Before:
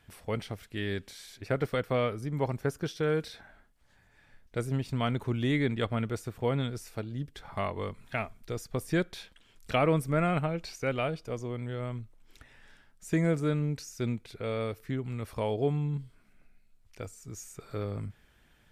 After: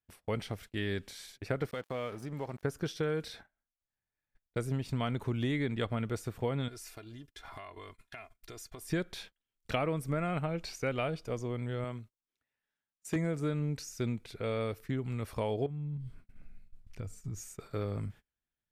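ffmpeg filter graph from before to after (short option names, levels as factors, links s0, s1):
-filter_complex "[0:a]asettb=1/sr,asplit=3[s0][s1][s2];[s0]atrim=end=1.714[s3];[s1]atrim=start=1.71:end=2.63,asetpts=PTS-STARTPTS,afade=t=in:d=0.004:c=qsin,afade=t=out:st=0.916:d=0.004:c=qsin,aeval=exprs='sgn(val(0))*max(abs(val(0))-0.00422,0)':c=same,lowshelf=f=120:g=-8.5,acompressor=threshold=0.0158:ratio=2.5:attack=3.2:release=140:knee=1:detection=peak[s4];[s2]atrim=start=2.626[s5];[s3][s4]acrossfade=d=0.004:c1=hsin:c2=qsin[s6];[s6][s5]acrossfade=d=0.004:c1=qsin:c2=hsin,asettb=1/sr,asplit=3[s7][s8][s9];[s7]atrim=end=6.684[s10];[s8]atrim=start=6.68:end=8.9,asetpts=PTS-STARTPTS,afade=t=in:d=0.004:c=qsin,afade=t=out:st=2.216:d=0.004:c=qsin,tiltshelf=f=720:g=-5,aecho=1:1:2.9:0.58,atrim=end_sample=97902,acompressor=threshold=0.00708:ratio=8:attack=3.2:release=140:knee=1:detection=peak[s11];[s9]atrim=start=8.896[s12];[s10][s11]acrossfade=d=0.004:c1=hsin:c2=qsin[s13];[s13][s12]acrossfade=d=0.004:c1=qsin:c2=hsin,asettb=1/sr,asplit=3[s14][s15][s16];[s14]atrim=end=11.844[s17];[s15]atrim=start=11.84:end=13.16,asetpts=PTS-STARTPTS,afade=t=in:d=0.004:c=qsin,afade=t=out:st=1.316:d=0.004:c=qsin,highpass=f=200:p=1,asoftclip=type=hard:threshold=0.0668[s18];[s16]atrim=start=13.156[s19];[s17][s18]acrossfade=d=0.004:c1=hsin:c2=qsin[s20];[s20][s19]acrossfade=d=0.004:c1=qsin:c2=hsin,asettb=1/sr,asplit=3[s21][s22][s23];[s21]atrim=end=15.664[s24];[s22]atrim=start=15.66:end=17.41,asetpts=PTS-STARTPTS,afade=t=in:d=0.004:c=qsin,afade=t=out:st=1.746:d=0.004:c=qsin,bass=f=250:g=11,treble=f=4000:g=-3,acompressor=threshold=0.02:ratio=20:attack=3.2:release=140:knee=1:detection=peak[s25];[s23]atrim=start=17.406[s26];[s24][s25]acrossfade=d=0.004:c1=hsin:c2=qsin[s27];[s27][s26]acrossfade=d=0.004:c1=qsin:c2=hsin,agate=range=0.0282:threshold=0.00355:ratio=16:detection=peak,acompressor=threshold=0.0398:ratio=6"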